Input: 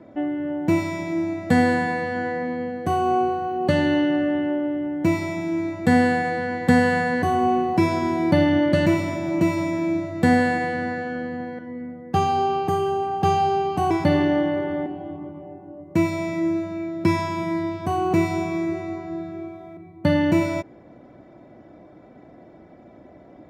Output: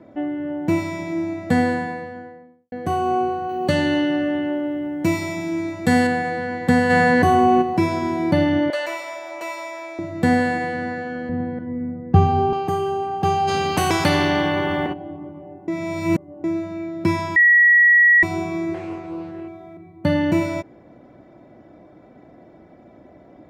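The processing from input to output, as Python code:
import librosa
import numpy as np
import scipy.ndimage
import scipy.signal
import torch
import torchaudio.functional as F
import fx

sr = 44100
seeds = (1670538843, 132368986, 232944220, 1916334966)

y = fx.studio_fade_out(x, sr, start_s=1.42, length_s=1.3)
y = fx.high_shelf(y, sr, hz=3100.0, db=8.0, at=(3.49, 6.07))
y = fx.env_flatten(y, sr, amount_pct=70, at=(6.89, 7.61), fade=0.02)
y = fx.highpass(y, sr, hz=590.0, slope=24, at=(8.7, 9.99))
y = fx.riaa(y, sr, side='playback', at=(11.29, 12.53))
y = fx.spectral_comp(y, sr, ratio=2.0, at=(13.47, 14.92), fade=0.02)
y = fx.doppler_dist(y, sr, depth_ms=0.31, at=(18.74, 19.48))
y = fx.edit(y, sr, fx.reverse_span(start_s=15.68, length_s=0.76),
    fx.bleep(start_s=17.36, length_s=0.87, hz=1920.0, db=-9.5), tone=tone)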